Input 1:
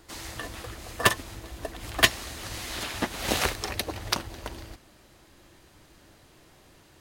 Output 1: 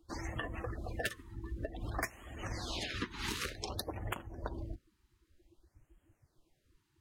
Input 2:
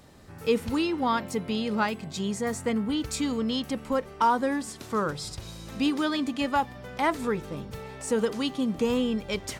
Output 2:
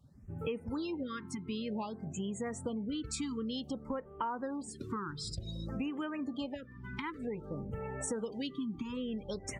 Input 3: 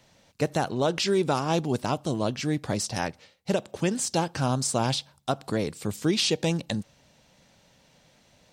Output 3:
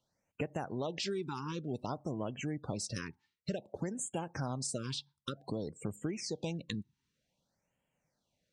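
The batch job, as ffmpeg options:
-af "afftdn=nr=26:nf=-40,acompressor=threshold=-40dB:ratio=6,afftfilt=real='re*(1-between(b*sr/1024,570*pow(4800/570,0.5+0.5*sin(2*PI*0.54*pts/sr))/1.41,570*pow(4800/570,0.5+0.5*sin(2*PI*0.54*pts/sr))*1.41))':imag='im*(1-between(b*sr/1024,570*pow(4800/570,0.5+0.5*sin(2*PI*0.54*pts/sr))/1.41,570*pow(4800/570,0.5+0.5*sin(2*PI*0.54*pts/sr))*1.41))':win_size=1024:overlap=0.75,volume=4.5dB"

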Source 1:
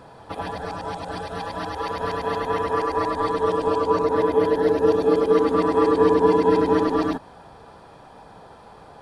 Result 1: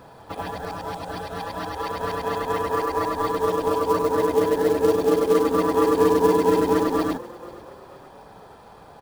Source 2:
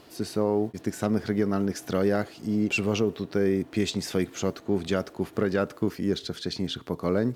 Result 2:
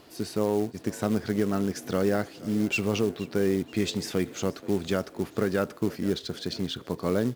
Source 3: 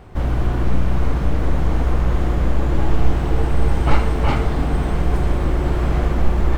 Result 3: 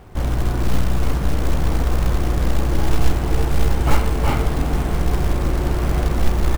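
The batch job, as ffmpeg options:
-filter_complex "[0:a]acrusher=bits=5:mode=log:mix=0:aa=0.000001,asplit=4[a][b][c][d];[b]adelay=477,afreqshift=39,volume=-20dB[e];[c]adelay=954,afreqshift=78,volume=-26.9dB[f];[d]adelay=1431,afreqshift=117,volume=-33.9dB[g];[a][e][f][g]amix=inputs=4:normalize=0,volume=-1dB"

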